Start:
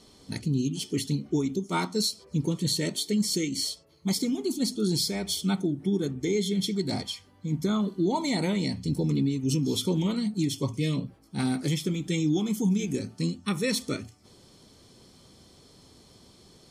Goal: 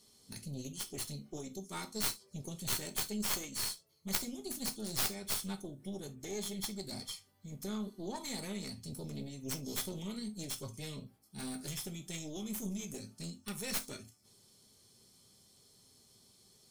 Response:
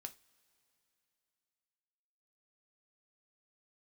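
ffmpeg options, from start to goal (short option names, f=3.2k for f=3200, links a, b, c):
-filter_complex "[0:a]aemphasis=mode=production:type=75fm,aeval=exprs='0.631*(cos(1*acos(clip(val(0)/0.631,-1,1)))-cos(1*PI/2))+0.282*(cos(2*acos(clip(val(0)/0.631,-1,1)))-cos(2*PI/2))+0.282*(cos(3*acos(clip(val(0)/0.631,-1,1)))-cos(3*PI/2))':c=same[a];[1:a]atrim=start_sample=2205,atrim=end_sample=3528[b];[a][b]afir=irnorm=-1:irlink=0"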